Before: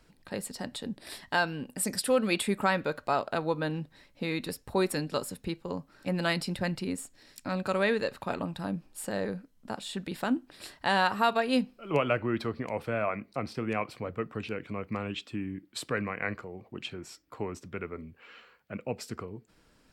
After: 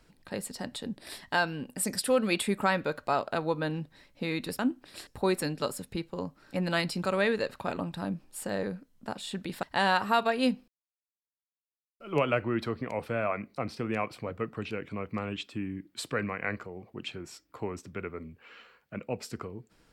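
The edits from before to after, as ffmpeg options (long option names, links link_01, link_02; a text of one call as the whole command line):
ffmpeg -i in.wav -filter_complex "[0:a]asplit=6[link_01][link_02][link_03][link_04][link_05][link_06];[link_01]atrim=end=4.592[link_07];[link_02]atrim=start=10.248:end=10.732[link_08];[link_03]atrim=start=4.588:end=6.552[link_09];[link_04]atrim=start=7.648:end=10.252[link_10];[link_05]atrim=start=10.728:end=11.78,asetpts=PTS-STARTPTS,afade=type=out:start_time=1.048:duration=0.004:curve=hsin,apad=pad_dur=1.32[link_11];[link_06]atrim=start=11.78,asetpts=PTS-STARTPTS,afade=type=in:duration=0.004:curve=hsin[link_12];[link_07][link_08]acrossfade=duration=0.004:curve1=hsin:curve2=hsin[link_13];[link_13][link_09]acrossfade=duration=0.004:curve1=hsin:curve2=hsin[link_14];[link_14][link_10]acrossfade=duration=0.004:curve1=hsin:curve2=hsin[link_15];[link_11][link_12]concat=n=2:v=0:a=1[link_16];[link_15][link_16]acrossfade=duration=0.004:curve1=hsin:curve2=hsin" out.wav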